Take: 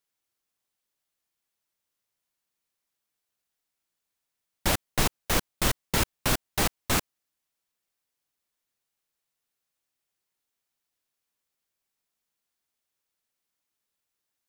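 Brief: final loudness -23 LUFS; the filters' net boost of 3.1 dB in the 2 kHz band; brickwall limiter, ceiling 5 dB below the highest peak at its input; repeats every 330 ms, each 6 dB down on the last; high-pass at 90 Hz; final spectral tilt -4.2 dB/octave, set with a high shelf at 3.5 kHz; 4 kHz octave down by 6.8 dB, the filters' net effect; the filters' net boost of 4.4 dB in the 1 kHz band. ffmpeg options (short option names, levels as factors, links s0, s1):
-af "highpass=90,equalizer=f=1000:t=o:g=5,equalizer=f=2000:t=o:g=6,highshelf=f=3500:g=-8,equalizer=f=4000:t=o:g=-6,alimiter=limit=0.15:level=0:latency=1,aecho=1:1:330|660|990|1320|1650|1980:0.501|0.251|0.125|0.0626|0.0313|0.0157,volume=2.24"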